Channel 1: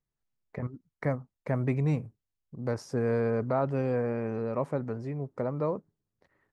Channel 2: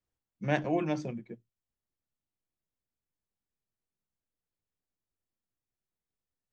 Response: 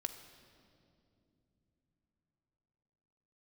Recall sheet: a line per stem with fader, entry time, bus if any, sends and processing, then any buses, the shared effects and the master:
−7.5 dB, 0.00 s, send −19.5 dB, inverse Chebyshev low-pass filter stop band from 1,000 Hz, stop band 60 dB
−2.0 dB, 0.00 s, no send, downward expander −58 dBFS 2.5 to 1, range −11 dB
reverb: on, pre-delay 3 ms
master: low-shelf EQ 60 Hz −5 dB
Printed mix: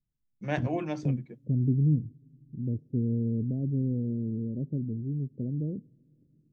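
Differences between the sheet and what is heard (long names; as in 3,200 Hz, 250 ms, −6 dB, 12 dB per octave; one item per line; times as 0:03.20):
stem 1 −7.5 dB → +3.5 dB
master: missing low-shelf EQ 60 Hz −5 dB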